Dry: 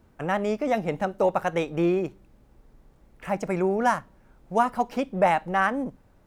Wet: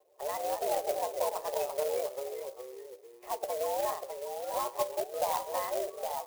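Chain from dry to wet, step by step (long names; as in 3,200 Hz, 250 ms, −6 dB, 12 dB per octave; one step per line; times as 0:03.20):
spectral magnitudes quantised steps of 30 dB
brickwall limiter −17.5 dBFS, peak gain reduction 7 dB
tuned comb filter 480 Hz, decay 0.17 s, harmonics all, mix 70%
delay with pitch and tempo change per echo 173 ms, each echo −2 semitones, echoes 3, each echo −6 dB
single-sideband voice off tune +110 Hz 270–2,300 Hz
phaser with its sweep stopped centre 630 Hz, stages 4
on a send at −15 dB: convolution reverb RT60 0.75 s, pre-delay 5 ms
on the sum: converter with an unsteady clock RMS 0.065 ms
level +5.5 dB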